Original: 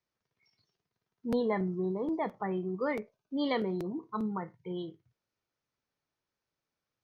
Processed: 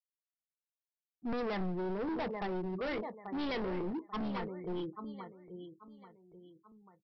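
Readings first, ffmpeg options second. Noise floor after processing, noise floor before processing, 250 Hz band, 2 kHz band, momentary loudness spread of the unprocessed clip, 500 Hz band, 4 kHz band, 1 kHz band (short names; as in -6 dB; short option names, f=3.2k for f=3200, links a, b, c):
under -85 dBFS, under -85 dBFS, -3.5 dB, -1.0 dB, 9 LU, -4.0 dB, -1.5 dB, -2.5 dB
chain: -filter_complex "[0:a]afftfilt=real='re*gte(hypot(re,im),0.00447)':imag='im*gte(hypot(re,im),0.00447)':win_size=1024:overlap=0.75,afftdn=nr=34:nf=-45,asplit=2[a][b];[b]aecho=0:1:837|1674|2511:0.251|0.0553|0.0122[c];[a][c]amix=inputs=2:normalize=0,acompressor=mode=upward:threshold=-50dB:ratio=2.5,aresample=11025,volume=35.5dB,asoftclip=hard,volume=-35.5dB,aresample=44100,asubboost=boost=3:cutoff=58,volume=2dB"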